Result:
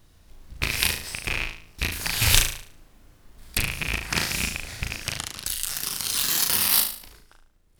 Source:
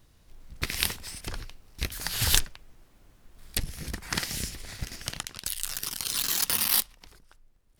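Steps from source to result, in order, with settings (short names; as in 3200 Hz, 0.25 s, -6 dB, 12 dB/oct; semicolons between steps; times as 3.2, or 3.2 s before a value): rattling part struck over -37 dBFS, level -15 dBFS; flutter echo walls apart 6.3 m, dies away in 0.48 s; gain +2.5 dB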